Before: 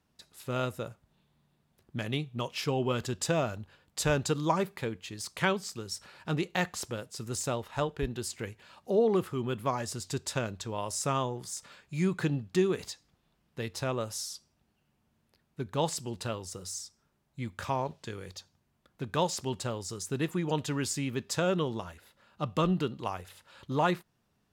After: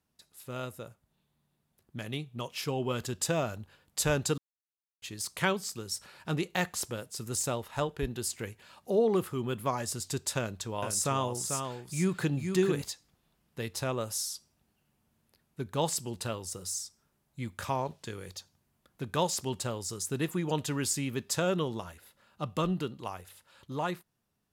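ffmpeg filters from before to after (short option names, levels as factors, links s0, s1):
-filter_complex "[0:a]asettb=1/sr,asplit=3[s0][s1][s2];[s0]atrim=end=10.384[s3];[s1]atrim=start=10.38:end=12.82,asetpts=PTS-STARTPTS,afade=t=in:d=0.004:c=qsin,afade=t=out:st=2.436:d=0.004:c=qsin,aecho=1:1:443:0.501,atrim=end_sample=107604[s4];[s2]atrim=start=12.816[s5];[s3][s4]acrossfade=d=0.004:c1=hsin:c2=qsin[s6];[s6][s5]acrossfade=d=0.004:c1=qsin:c2=hsin,asplit=3[s7][s8][s9];[s7]atrim=end=4.38,asetpts=PTS-STARTPTS,afade=t=out:st=4.376:d=0.004:c=hsin[s10];[s8]atrim=start=4.38:end=5.02,asetpts=PTS-STARTPTS,volume=0[s11];[s9]atrim=start=5.02,asetpts=PTS-STARTPTS,afade=t=in:d=0.004:c=hsin[s12];[s10][s11][s12]concat=n=3:v=0:a=1,equalizer=f=12000:t=o:w=1.1:g=8.5,dynaudnorm=f=470:g=11:m=2,volume=0.473"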